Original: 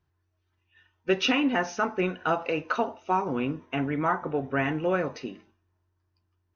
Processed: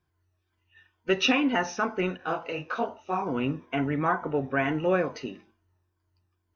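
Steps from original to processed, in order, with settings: moving spectral ripple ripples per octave 1.8, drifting -2.2 Hz, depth 8 dB; 2.17–3.22 detuned doubles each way 49 cents

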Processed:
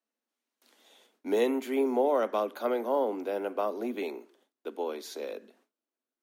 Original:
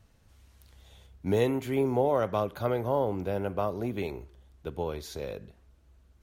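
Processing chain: steep high-pass 220 Hz 96 dB/oct; gate with hold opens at -56 dBFS

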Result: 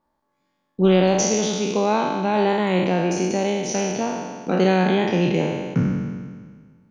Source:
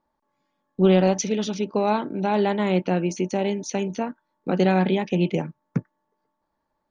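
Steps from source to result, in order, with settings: spectral trails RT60 1.66 s

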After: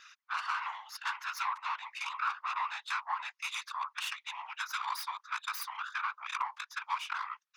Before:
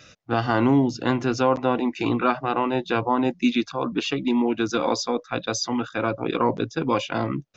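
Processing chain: tracing distortion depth 0.16 ms; steep high-pass 1000 Hz 72 dB/oct; whisperiser; compressor 4:1, threshold -29 dBFS, peak gain reduction 9.5 dB; high shelf 2700 Hz -8.5 dB; hard clip -22.5 dBFS, distortion -37 dB

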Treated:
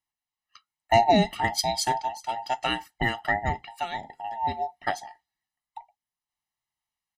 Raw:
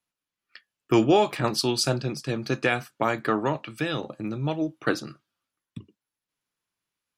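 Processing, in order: band inversion scrambler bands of 1000 Hz; comb 1 ms, depth 80%; upward expander 1.5:1, over -29 dBFS

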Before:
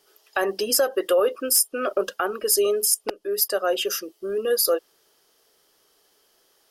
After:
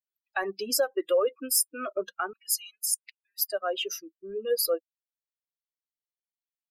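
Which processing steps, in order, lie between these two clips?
per-bin expansion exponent 2; 2.33–3.52 elliptic high-pass 1900 Hz, stop band 50 dB; gain -2 dB

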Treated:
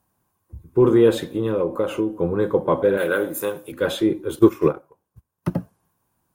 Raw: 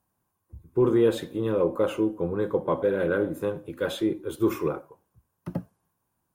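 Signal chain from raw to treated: 1.23–2.19 compressor, threshold -24 dBFS, peak gain reduction 6 dB; 2.97–3.72 RIAA curve recording; 4.39–5.51 transient shaper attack +7 dB, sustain -11 dB; gain +6 dB

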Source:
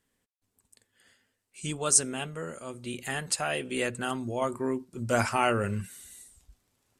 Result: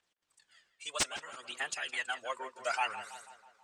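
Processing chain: HPF 920 Hz 12 dB/oct; high shelf 2900 Hz +11.5 dB; in parallel at -1 dB: compressor 16:1, threshold -39 dBFS, peak gain reduction 33.5 dB; on the sum: phaser 0.32 Hz, delay 2.2 ms, feedback 65%; wrapped overs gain 1.5 dB; requantised 10-bit, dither none; time stretch by phase-locked vocoder 0.52×; air absorption 120 m; on a send: tape echo 0.163 s, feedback 59%, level -10.5 dB, low-pass 2400 Hz; on the sum: gain -7 dB

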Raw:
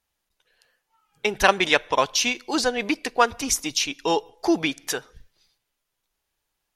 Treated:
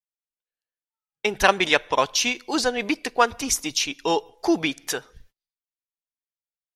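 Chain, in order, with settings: gate -52 dBFS, range -33 dB

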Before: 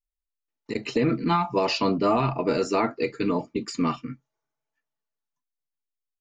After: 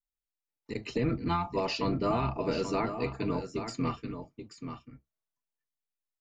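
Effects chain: octaver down 1 oct, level -4 dB; on a send: echo 0.832 s -9 dB; on the sum: gain -7.5 dB

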